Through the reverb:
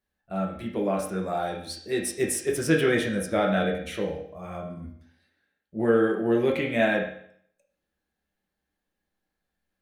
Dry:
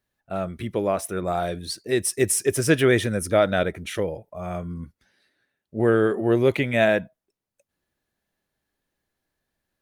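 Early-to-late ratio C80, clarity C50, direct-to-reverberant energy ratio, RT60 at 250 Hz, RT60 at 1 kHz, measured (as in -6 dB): 9.5 dB, 6.0 dB, -1.5 dB, 0.65 s, 0.65 s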